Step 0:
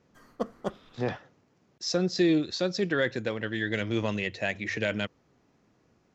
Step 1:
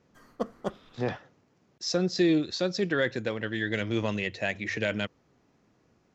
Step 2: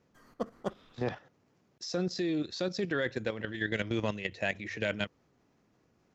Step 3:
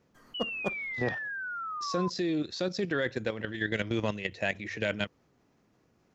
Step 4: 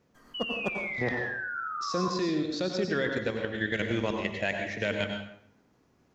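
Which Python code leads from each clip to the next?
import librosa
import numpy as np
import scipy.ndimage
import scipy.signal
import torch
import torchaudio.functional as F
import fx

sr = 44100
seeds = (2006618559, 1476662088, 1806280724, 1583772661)

y1 = x
y2 = fx.level_steps(y1, sr, step_db=10)
y3 = fx.spec_paint(y2, sr, seeds[0], shape='fall', start_s=0.34, length_s=1.76, low_hz=1000.0, high_hz=3000.0, level_db=-38.0)
y3 = y3 * librosa.db_to_amplitude(1.5)
y4 = fx.rev_plate(y3, sr, seeds[1], rt60_s=0.71, hf_ratio=0.75, predelay_ms=80, drr_db=3.0)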